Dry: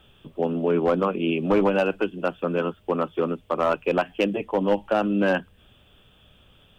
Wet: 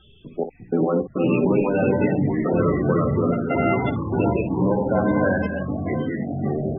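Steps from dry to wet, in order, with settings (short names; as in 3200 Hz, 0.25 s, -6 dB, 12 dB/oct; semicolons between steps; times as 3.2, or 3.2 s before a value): 3.32–4.12 sample sorter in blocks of 64 samples; de-hum 57.98 Hz, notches 15; in parallel at -1 dB: negative-ratio compressor -25 dBFS, ratio -0.5; on the sum: non-linear reverb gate 0.34 s rising, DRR 4 dB; step gate "xxx..xx.xxxx" 104 bpm -60 dB; on a send: early reflections 17 ms -10 dB, 58 ms -10.5 dB; on the sum: echoes that change speed 0.269 s, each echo -5 st, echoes 3; loudest bins only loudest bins 32; gain -3.5 dB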